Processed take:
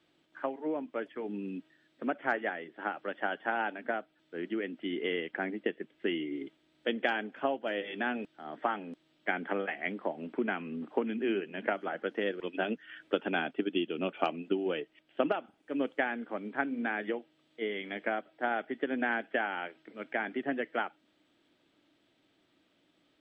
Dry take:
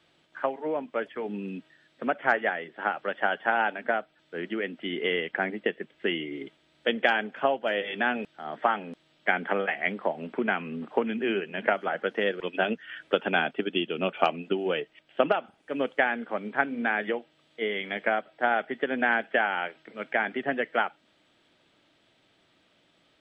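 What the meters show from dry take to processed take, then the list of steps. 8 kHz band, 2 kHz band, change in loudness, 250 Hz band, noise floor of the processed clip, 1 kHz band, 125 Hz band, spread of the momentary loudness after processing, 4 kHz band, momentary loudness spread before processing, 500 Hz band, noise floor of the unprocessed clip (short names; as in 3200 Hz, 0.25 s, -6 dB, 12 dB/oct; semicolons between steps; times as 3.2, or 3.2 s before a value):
n/a, -7.5 dB, -6.0 dB, -2.0 dB, -72 dBFS, -7.0 dB, -5.5 dB, 7 LU, -7.5 dB, 9 LU, -5.5 dB, -66 dBFS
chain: bell 300 Hz +8.5 dB 0.67 oct; gain -7.5 dB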